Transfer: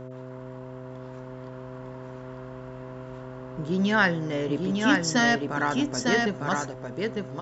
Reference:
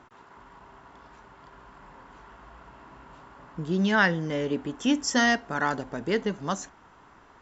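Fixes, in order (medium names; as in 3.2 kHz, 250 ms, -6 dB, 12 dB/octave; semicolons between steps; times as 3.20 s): de-hum 128.3 Hz, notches 5; inverse comb 903 ms -3.5 dB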